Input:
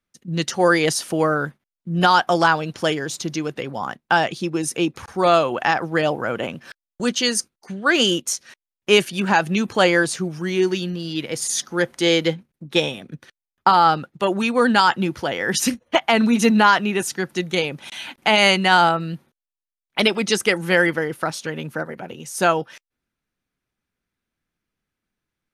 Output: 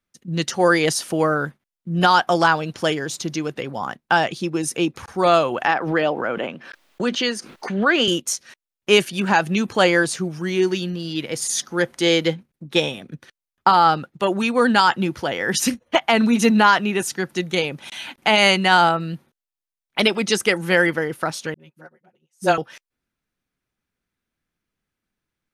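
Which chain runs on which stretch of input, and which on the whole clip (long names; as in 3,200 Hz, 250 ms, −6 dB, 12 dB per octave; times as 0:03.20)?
0:05.66–0:08.08: three-way crossover with the lows and the highs turned down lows −14 dB, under 180 Hz, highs −14 dB, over 4,100 Hz + background raised ahead of every attack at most 66 dB per second
0:21.54–0:22.58: comb filter 5.5 ms, depth 69% + all-pass dispersion highs, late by 55 ms, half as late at 350 Hz + expander for the loud parts 2.5 to 1, over −36 dBFS
whole clip: no processing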